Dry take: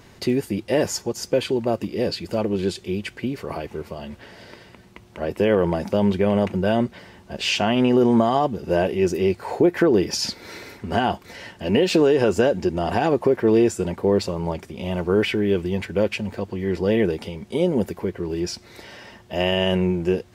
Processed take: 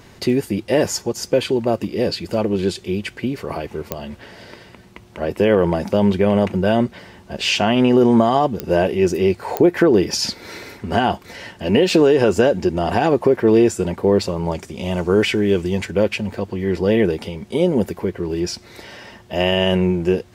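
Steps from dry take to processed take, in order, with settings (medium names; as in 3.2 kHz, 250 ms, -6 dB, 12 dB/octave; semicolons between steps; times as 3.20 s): 14.51–15.91 s: peaking EQ 7 kHz +8 dB 0.97 oct; clicks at 3.92/8.60/9.57 s, -10 dBFS; trim +3.5 dB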